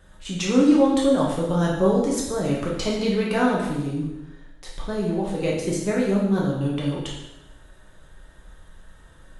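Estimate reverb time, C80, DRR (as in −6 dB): 1.0 s, 5.0 dB, −4.5 dB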